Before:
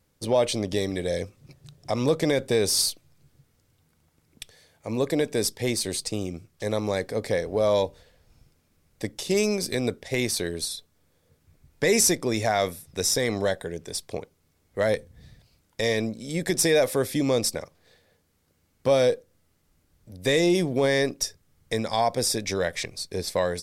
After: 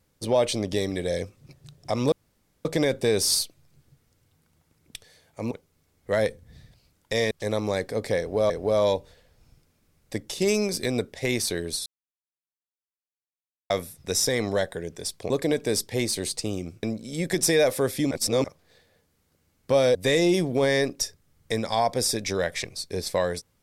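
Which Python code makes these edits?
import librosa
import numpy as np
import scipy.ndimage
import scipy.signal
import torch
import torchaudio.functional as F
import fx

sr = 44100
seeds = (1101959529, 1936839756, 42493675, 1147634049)

y = fx.edit(x, sr, fx.insert_room_tone(at_s=2.12, length_s=0.53),
    fx.swap(start_s=4.98, length_s=1.53, other_s=14.19, other_length_s=1.8),
    fx.repeat(start_s=7.39, length_s=0.31, count=2),
    fx.silence(start_s=10.75, length_s=1.84),
    fx.reverse_span(start_s=17.27, length_s=0.33),
    fx.cut(start_s=19.11, length_s=1.05), tone=tone)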